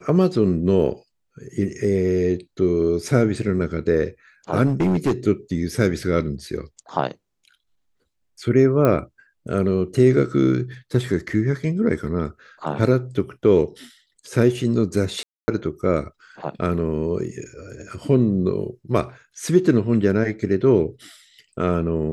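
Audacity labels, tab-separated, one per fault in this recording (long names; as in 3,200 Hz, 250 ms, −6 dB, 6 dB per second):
4.660000	5.120000	clipping −15 dBFS
8.850000	8.850000	click −8 dBFS
15.230000	15.480000	drop-out 250 ms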